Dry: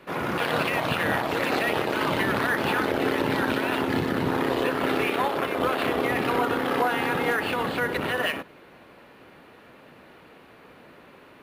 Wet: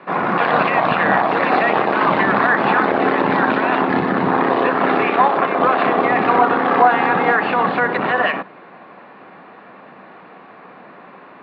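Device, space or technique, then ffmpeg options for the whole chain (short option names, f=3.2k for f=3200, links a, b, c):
kitchen radio: -filter_complex "[0:a]highpass=170,equalizer=f=190:t=q:w=4:g=7,equalizer=f=740:t=q:w=4:g=8,equalizer=f=1.1k:t=q:w=4:g=8,equalizer=f=1.7k:t=q:w=4:g=3,equalizer=f=3.1k:t=q:w=4:g=-6,lowpass=f=3.6k:w=0.5412,lowpass=f=3.6k:w=1.3066,asettb=1/sr,asplit=3[a][b][c];[a]atrim=end=3.954[d];[b]atrim=start=3.95:end=4.57,asetpts=PTS-STARTPTS,afade=t=in:d=0.004:c=qsin,afade=t=out:st=0.616:d=0.004:c=qsin,lowpass=6.9k[e];[c]atrim=start=4.566[f];[d][e]acrossfade=d=0.004:c1=hsin:c2=qsin[g];[g][f]acrossfade=d=0.004:c1=qsin:c2=hsin,volume=6dB"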